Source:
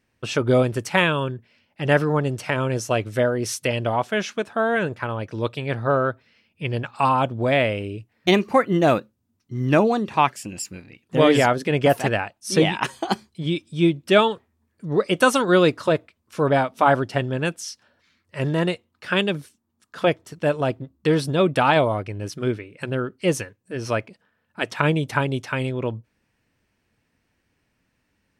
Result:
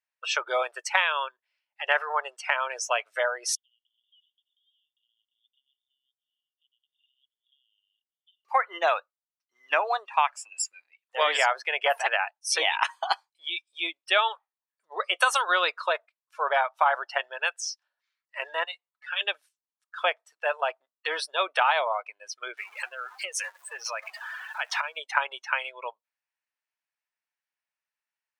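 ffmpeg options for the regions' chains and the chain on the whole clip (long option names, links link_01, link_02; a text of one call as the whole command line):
ffmpeg -i in.wav -filter_complex "[0:a]asettb=1/sr,asplit=3[link_01][link_02][link_03];[link_01]atrim=end=3.554[link_04];[link_02]atrim=start=3.55:end=8.45,asetpts=PTS-STARTPTS,afade=type=in:duration=0.004:curve=qsin,afade=type=out:start_time=4.896:duration=0.004:curve=qsin,asuperpass=centerf=3200:order=20:qfactor=3.8,acompressor=threshold=-54dB:ratio=4:attack=3.2:release=140:knee=1:detection=peak[link_05];[link_03]atrim=start=8.446[link_06];[link_04][link_05]acrossfade=duration=0.004:curve1=hsin:curve2=qsin[link_07];[link_07][link_06]acrossfade=duration=0.004:curve1=qsin:curve2=hsin,asettb=1/sr,asplit=3[link_08][link_09][link_10];[link_08]atrim=end=18.644[link_11];[link_09]atrim=start=18.64:end=19.21,asetpts=PTS-STARTPTS,afade=type=in:duration=0.004:curve=qsin,afade=type=out:start_time=0.566:duration=0.004:curve=qsin,highshelf=frequency=4600:gain=-10,acrossover=split=140|3000[link_12][link_13][link_14];[link_13]acompressor=threshold=-43dB:ratio=2:attack=3.2:release=140:knee=2.83:detection=peak[link_15];[link_12][link_15][link_14]amix=inputs=3:normalize=0,aecho=1:1:6.9:0.59,atrim=end_sample=25137[link_16];[link_10]atrim=start=19.206[link_17];[link_11][link_16]acrossfade=duration=0.004:curve1=hsin:curve2=qsin[link_18];[link_18][link_17]acrossfade=duration=0.004:curve1=qsin:curve2=hsin,asettb=1/sr,asplit=3[link_19][link_20][link_21];[link_19]atrim=end=22.574[link_22];[link_20]atrim=start=22.57:end=24.97,asetpts=PTS-STARTPTS,afade=type=in:duration=0.004:curve=qsin,afade=type=out:start_time=2.396:duration=0.004:curve=qsin,aeval=exprs='val(0)+0.5*0.0316*sgn(val(0))':channel_layout=same,acompressor=threshold=-24dB:ratio=12:attack=3.2:release=140:knee=1:detection=peak[link_23];[link_21]atrim=start=24.966[link_24];[link_22][link_23]acrossfade=duration=0.004:curve1=hsin:curve2=qsin[link_25];[link_25][link_24]acrossfade=duration=0.004:curve1=qsin:curve2=hsin,highpass=frequency=760:width=0.5412,highpass=frequency=760:width=1.3066,afftdn=noise_reduction=21:noise_floor=-36,acompressor=threshold=-21dB:ratio=4,volume=2.5dB" out.wav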